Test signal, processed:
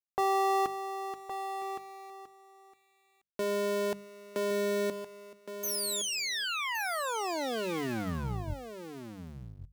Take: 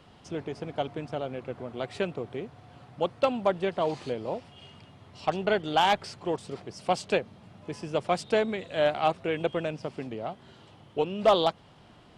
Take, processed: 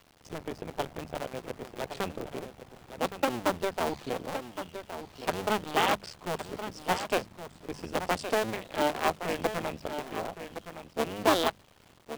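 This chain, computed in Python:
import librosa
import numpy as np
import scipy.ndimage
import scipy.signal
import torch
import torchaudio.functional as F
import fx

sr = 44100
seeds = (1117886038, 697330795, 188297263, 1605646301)

p1 = fx.cycle_switch(x, sr, every=2, mode='muted')
p2 = np.where(np.abs(p1) >= 10.0 ** (-52.0 / 20.0), p1, 0.0)
p3 = fx.hum_notches(p2, sr, base_hz=50, count=4)
y = p3 + fx.echo_single(p3, sr, ms=1116, db=-10.0, dry=0)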